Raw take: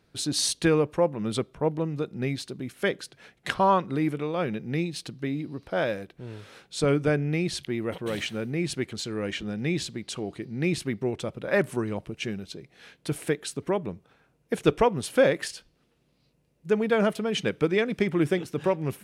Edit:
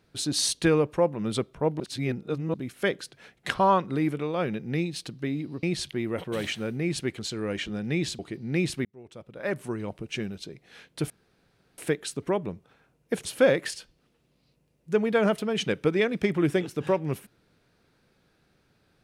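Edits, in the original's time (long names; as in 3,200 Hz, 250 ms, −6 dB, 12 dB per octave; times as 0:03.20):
0:01.80–0:02.54: reverse
0:05.63–0:07.37: remove
0:09.93–0:10.27: remove
0:10.93–0:12.28: fade in
0:13.18: splice in room tone 0.68 s
0:14.65–0:15.02: remove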